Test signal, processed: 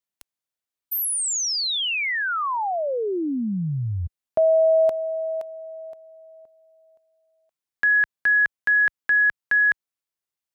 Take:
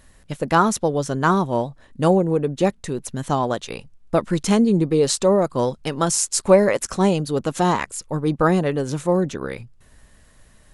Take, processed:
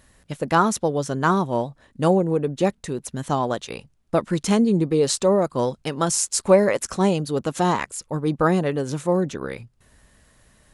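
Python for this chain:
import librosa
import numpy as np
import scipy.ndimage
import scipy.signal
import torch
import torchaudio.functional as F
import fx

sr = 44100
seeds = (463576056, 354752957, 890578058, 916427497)

y = fx.highpass(x, sr, hz=48.0, slope=6)
y = y * librosa.db_to_amplitude(-1.5)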